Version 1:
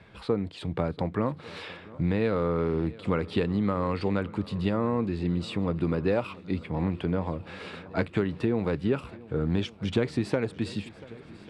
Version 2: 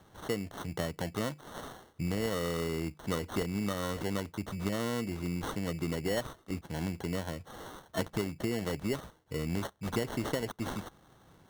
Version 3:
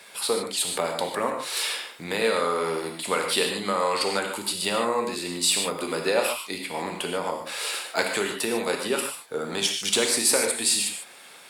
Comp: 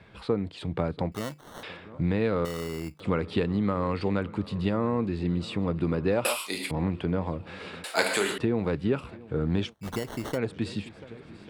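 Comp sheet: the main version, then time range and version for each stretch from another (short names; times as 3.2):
1
1.12–1.63 from 2
2.45–3 from 2
6.25–6.71 from 3
7.84–8.38 from 3
9.72–10.36 from 2, crossfade 0.06 s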